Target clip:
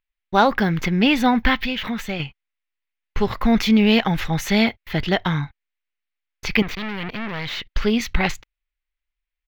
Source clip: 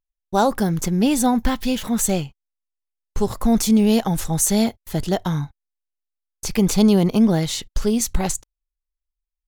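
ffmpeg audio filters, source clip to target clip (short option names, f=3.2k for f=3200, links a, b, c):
-filter_complex "[0:a]asettb=1/sr,asplit=3[a][b][c];[a]atrim=end=1.654[d];[b]atrim=start=1.65:end=2.2,asetpts=PTS-STARTPTS,afade=t=in:d=0.004:c=qsin,afade=t=out:st=0.546:d=0.004:c=qsin,acompressor=threshold=-23dB:ratio=10[e];[c]atrim=start=2.196[f];[d][e]acrossfade=d=0.004:c1=hsin:c2=qsin[g];[g][f]acrossfade=d=0.004:c1=qsin:c2=hsin,asettb=1/sr,asplit=3[h][i][j];[h]atrim=end=6.624[k];[i]atrim=start=6.62:end=7.69,asetpts=PTS-STARTPTS,afade=t=in:d=0.004:c=qsin,afade=t=out:st=1.066:d=0.004:c=qsin,aeval=exprs='(tanh(28.2*val(0)+0.8)-tanh(0.8))/28.2':c=same[l];[j]atrim=start=7.686[m];[k][l]acrossfade=d=0.004:c1=hsin:c2=qsin[n];[n][m]acrossfade=d=0.004:c1=qsin:c2=hsin,firequalizer=gain_entry='entry(620,0);entry(2100,15);entry(8600,-24);entry(15000,-5)':delay=0.05:min_phase=1"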